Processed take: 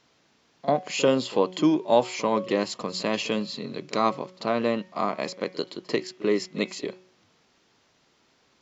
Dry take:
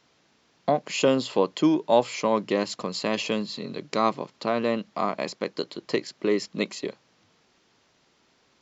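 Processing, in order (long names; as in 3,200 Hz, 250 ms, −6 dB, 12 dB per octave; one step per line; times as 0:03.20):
hum removal 184.6 Hz, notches 19
echo ahead of the sound 43 ms −18 dB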